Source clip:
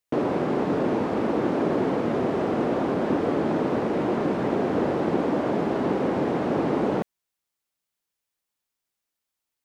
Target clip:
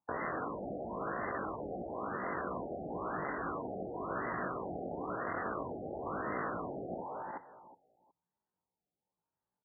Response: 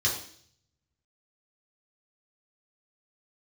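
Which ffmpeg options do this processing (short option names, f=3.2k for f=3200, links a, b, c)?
-af "adynamicsmooth=sensitivity=4:basefreq=530,equalizer=f=100:t=o:w=0.33:g=8,equalizer=f=500:t=o:w=0.33:g=12,equalizer=f=2k:t=o:w=0.33:g=-7,equalizer=f=5k:t=o:w=0.33:g=9,asetrate=78577,aresample=44100,atempo=0.561231,asoftclip=type=hard:threshold=-24dB,highshelf=f=3.3k:g=10.5,alimiter=level_in=6dB:limit=-24dB:level=0:latency=1:release=56,volume=-6dB,highpass=56,aecho=1:1:367|734|1101:0.316|0.0632|0.0126,afftfilt=real='re*lt(hypot(re,im),0.0501)':imag='im*lt(hypot(re,im),0.0501)':win_size=1024:overlap=0.75,afftfilt=real='re*lt(b*sr/1024,800*pow(2100/800,0.5+0.5*sin(2*PI*0.98*pts/sr)))':imag='im*lt(b*sr/1024,800*pow(2100/800,0.5+0.5*sin(2*PI*0.98*pts/sr)))':win_size=1024:overlap=0.75,volume=5dB"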